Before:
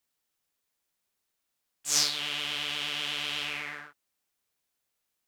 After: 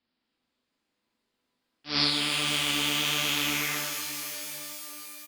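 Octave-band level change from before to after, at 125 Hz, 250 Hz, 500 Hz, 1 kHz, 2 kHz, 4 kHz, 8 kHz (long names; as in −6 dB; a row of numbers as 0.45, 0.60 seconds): +11.5, +14.0, +7.5, +6.5, +5.0, +4.0, +0.5 decibels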